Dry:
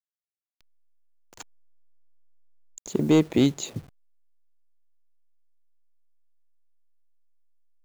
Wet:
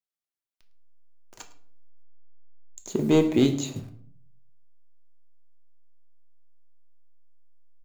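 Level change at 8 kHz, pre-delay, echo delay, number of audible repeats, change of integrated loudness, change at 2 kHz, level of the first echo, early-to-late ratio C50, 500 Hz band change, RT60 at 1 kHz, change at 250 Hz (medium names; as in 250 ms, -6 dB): no reading, 3 ms, 106 ms, 1, 0.0 dB, -0.5 dB, -19.0 dB, 11.5 dB, +1.5 dB, 0.50 s, -0.5 dB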